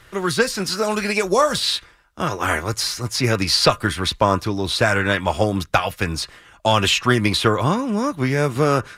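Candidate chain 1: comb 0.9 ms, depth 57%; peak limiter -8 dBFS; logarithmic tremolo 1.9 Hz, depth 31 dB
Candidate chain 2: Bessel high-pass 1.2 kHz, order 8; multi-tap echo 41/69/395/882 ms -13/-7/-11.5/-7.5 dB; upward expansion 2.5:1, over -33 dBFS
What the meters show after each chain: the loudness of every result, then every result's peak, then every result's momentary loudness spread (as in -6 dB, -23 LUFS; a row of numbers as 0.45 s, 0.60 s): -26.5 LUFS, -28.0 LUFS; -8.0 dBFS, -6.5 dBFS; 15 LU, 20 LU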